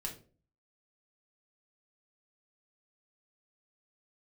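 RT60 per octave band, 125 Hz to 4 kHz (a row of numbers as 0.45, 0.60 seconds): 0.60, 0.55, 0.45, 0.35, 0.30, 0.25 seconds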